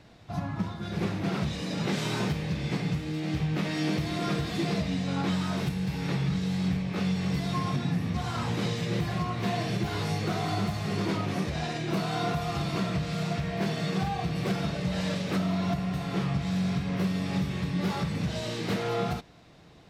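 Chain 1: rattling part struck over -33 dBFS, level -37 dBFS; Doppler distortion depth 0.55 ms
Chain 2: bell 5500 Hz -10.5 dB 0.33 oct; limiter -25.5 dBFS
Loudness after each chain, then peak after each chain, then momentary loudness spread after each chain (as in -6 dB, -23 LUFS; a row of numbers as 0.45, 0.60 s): -30.0, -34.0 LUFS; -18.5, -25.5 dBFS; 3, 2 LU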